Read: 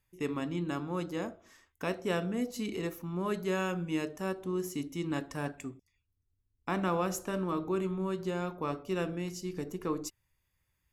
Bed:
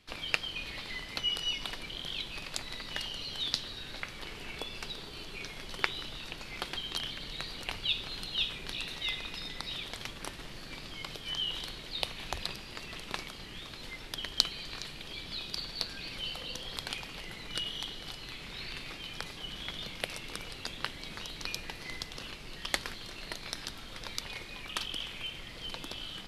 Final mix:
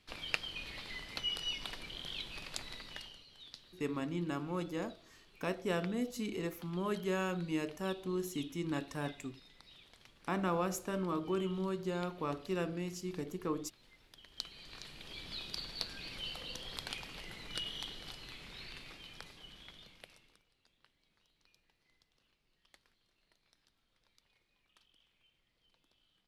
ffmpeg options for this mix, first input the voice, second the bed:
-filter_complex "[0:a]adelay=3600,volume=0.708[s0];[1:a]volume=3.35,afade=t=out:st=2.65:d=0.6:silence=0.177828,afade=t=in:st=14.27:d=1:silence=0.16788,afade=t=out:st=17.89:d=2.54:silence=0.0354813[s1];[s0][s1]amix=inputs=2:normalize=0"

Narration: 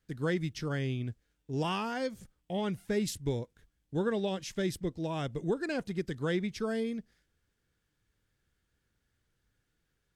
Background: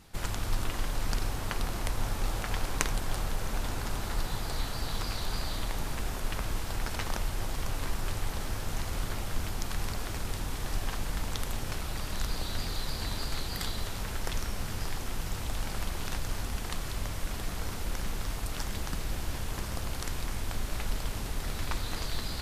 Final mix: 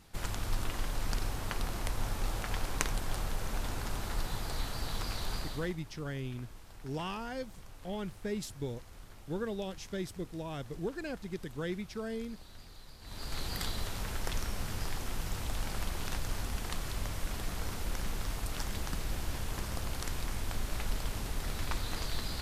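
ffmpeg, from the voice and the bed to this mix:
-filter_complex "[0:a]adelay=5350,volume=0.531[s0];[1:a]volume=4.73,afade=t=out:st=5.32:d=0.45:silence=0.16788,afade=t=in:st=13.02:d=0.44:silence=0.149624[s1];[s0][s1]amix=inputs=2:normalize=0"

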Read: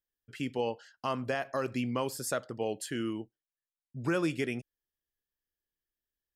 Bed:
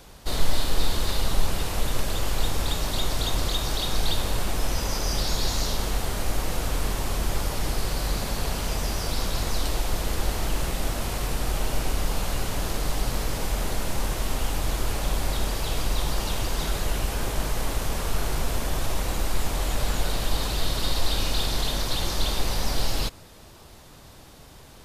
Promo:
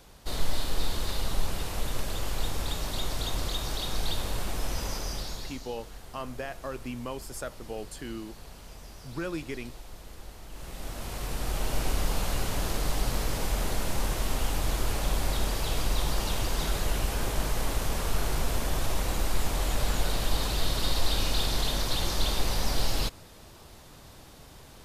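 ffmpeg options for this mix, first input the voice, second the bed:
-filter_complex "[0:a]adelay=5100,volume=0.596[s0];[1:a]volume=3.76,afade=t=out:st=4.87:d=0.74:silence=0.211349,afade=t=in:st=10.49:d=1.4:silence=0.141254[s1];[s0][s1]amix=inputs=2:normalize=0"

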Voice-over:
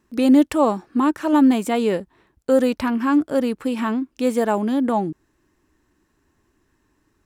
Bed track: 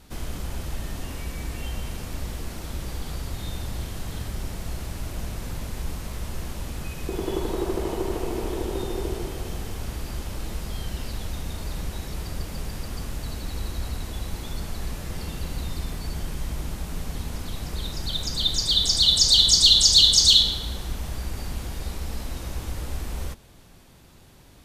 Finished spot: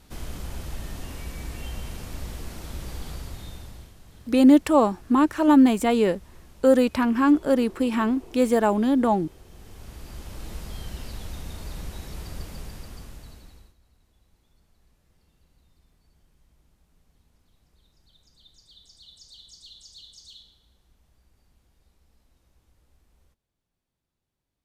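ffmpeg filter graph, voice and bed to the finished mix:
-filter_complex "[0:a]adelay=4150,volume=0.944[s0];[1:a]volume=3.16,afade=t=out:st=3.06:d=0.89:silence=0.188365,afade=t=in:st=9.48:d=1.08:silence=0.223872,afade=t=out:st=12.43:d=1.32:silence=0.0398107[s1];[s0][s1]amix=inputs=2:normalize=0"

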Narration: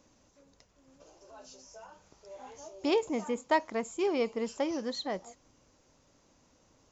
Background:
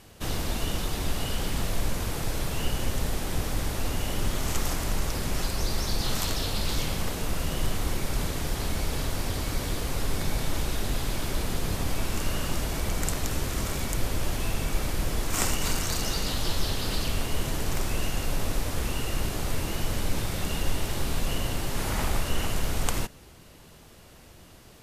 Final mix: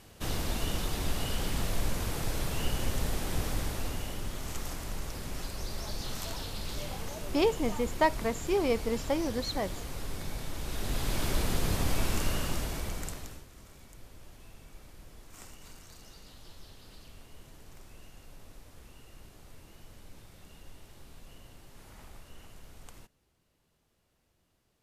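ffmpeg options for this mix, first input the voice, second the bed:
-filter_complex "[0:a]adelay=4500,volume=1.19[s0];[1:a]volume=2,afade=t=out:st=3.48:d=0.75:silence=0.473151,afade=t=in:st=10.59:d=0.66:silence=0.354813,afade=t=out:st=12.09:d=1.36:silence=0.0707946[s1];[s0][s1]amix=inputs=2:normalize=0"

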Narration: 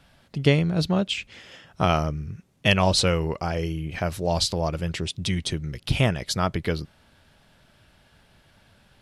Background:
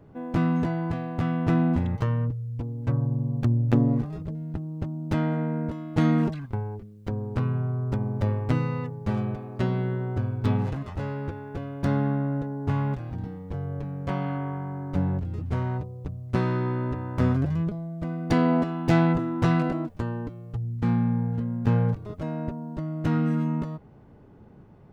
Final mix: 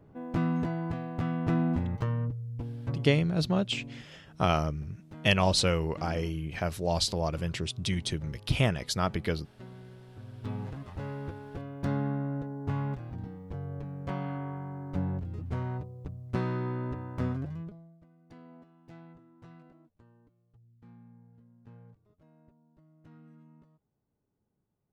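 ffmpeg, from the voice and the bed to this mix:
-filter_complex "[0:a]adelay=2600,volume=0.596[s0];[1:a]volume=3.35,afade=t=out:st=2.69:d=0.65:silence=0.149624,afade=t=in:st=10.15:d=0.96:silence=0.16788,afade=t=out:st=16.93:d=1.13:silence=0.0595662[s1];[s0][s1]amix=inputs=2:normalize=0"

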